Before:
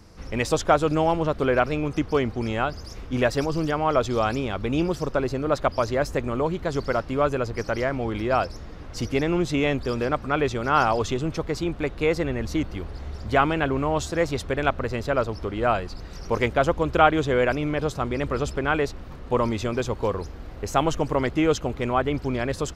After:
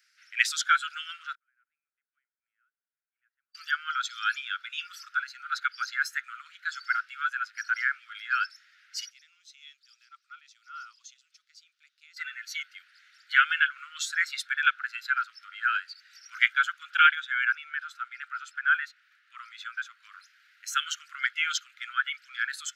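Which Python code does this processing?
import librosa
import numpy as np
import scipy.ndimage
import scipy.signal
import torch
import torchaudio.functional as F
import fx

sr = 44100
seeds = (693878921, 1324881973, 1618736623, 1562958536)

y = fx.lowpass_res(x, sr, hz=160.0, q=4.9, at=(1.35, 3.55))
y = fx.curve_eq(y, sr, hz=(700.0, 1600.0, 5500.0, 9100.0), db=(0, -26, -6, -13), at=(9.09, 12.16), fade=0.02)
y = fx.high_shelf(y, sr, hz=2400.0, db=-7.0, at=(17.15, 20.12))
y = fx.noise_reduce_blind(y, sr, reduce_db=12)
y = scipy.signal.sosfilt(scipy.signal.butter(16, 1400.0, 'highpass', fs=sr, output='sos'), y)
y = fx.high_shelf(y, sr, hz=3600.0, db=-8.5)
y = y * librosa.db_to_amplitude(9.0)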